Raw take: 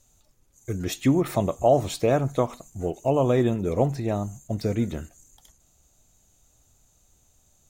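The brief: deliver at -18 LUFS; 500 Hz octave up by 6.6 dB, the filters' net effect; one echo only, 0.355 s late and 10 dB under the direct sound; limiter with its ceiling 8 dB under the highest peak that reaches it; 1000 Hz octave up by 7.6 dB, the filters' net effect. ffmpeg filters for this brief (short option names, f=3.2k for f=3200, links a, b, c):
-af "equalizer=f=500:t=o:g=5.5,equalizer=f=1k:t=o:g=8.5,alimiter=limit=-9dB:level=0:latency=1,aecho=1:1:355:0.316,volume=4dB"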